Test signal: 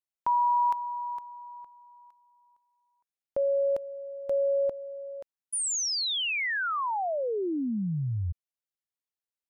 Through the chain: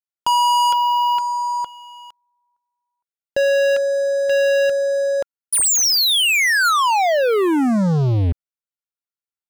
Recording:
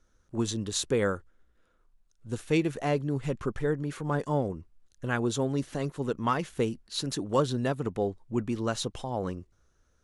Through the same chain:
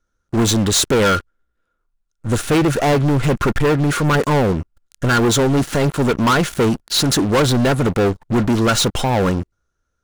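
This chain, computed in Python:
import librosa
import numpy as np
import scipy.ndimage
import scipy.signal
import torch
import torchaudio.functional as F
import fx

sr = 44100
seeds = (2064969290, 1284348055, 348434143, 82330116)

p1 = fx.small_body(x, sr, hz=(1400.0,), ring_ms=40, db=11)
p2 = fx.leveller(p1, sr, passes=5)
p3 = np.clip(p2, -10.0 ** (-25.5 / 20.0), 10.0 ** (-25.5 / 20.0))
y = p2 + (p3 * 10.0 ** (-4.0 / 20.0))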